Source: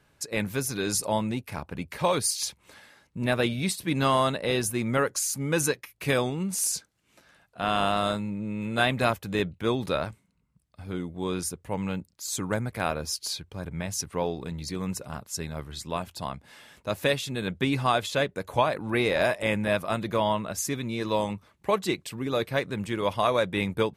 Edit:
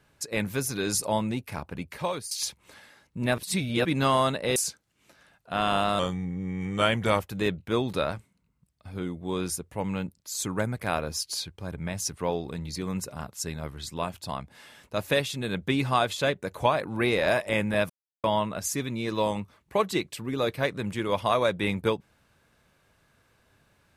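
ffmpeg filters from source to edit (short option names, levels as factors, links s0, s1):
-filter_complex "[0:a]asplit=9[s0][s1][s2][s3][s4][s5][s6][s7][s8];[s0]atrim=end=2.31,asetpts=PTS-STARTPTS,afade=t=out:st=1.52:d=0.79:c=qsin:silence=0.16788[s9];[s1]atrim=start=2.31:end=3.382,asetpts=PTS-STARTPTS,afade=t=in:d=0.004:c=hsin:silence=0.16788[s10];[s2]atrim=start=3.378:end=3.852,asetpts=PTS-STARTPTS,areverse[s11];[s3]atrim=start=3.848:end=4.562[s12];[s4]atrim=start=6.638:end=8.074[s13];[s5]atrim=start=8.07:end=9.15,asetpts=PTS-STARTPTS,asetrate=38808,aresample=44100[s14];[s6]atrim=start=9.146:end=19.83,asetpts=PTS-STARTPTS,afade=t=out:st=10.68:d=0.004:c=hsin[s15];[s7]atrim=start=19.83:end=20.17,asetpts=PTS-STARTPTS,volume=0[s16];[s8]atrim=start=20.17,asetpts=PTS-STARTPTS,afade=t=in:d=0.004:c=hsin[s17];[s9][s10]concat=n=2:v=0:a=1[s18];[s18][s11]acrossfade=d=0.004:c1=hsin:c2=hsin[s19];[s19][s12]acrossfade=d=0.004:c1=hsin:c2=hsin[s20];[s20][s13]acrossfade=d=0.004:c1=hsin:c2=hsin[s21];[s21][s14]acrossfade=d=0.004:c1=hsin:c2=hsin[s22];[s15][s16][s17]concat=n=3:v=0:a=1[s23];[s22][s23]acrossfade=d=0.004:c1=hsin:c2=hsin"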